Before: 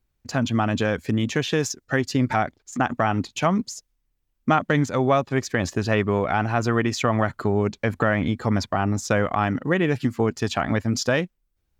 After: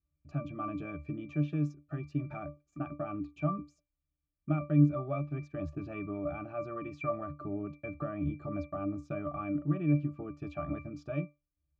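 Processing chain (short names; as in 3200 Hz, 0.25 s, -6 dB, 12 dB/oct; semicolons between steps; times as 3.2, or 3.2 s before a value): in parallel at -2.5 dB: limiter -18.5 dBFS, peak gain reduction 10 dB; on the sum: octave resonator D, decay 0.22 s; gain -2 dB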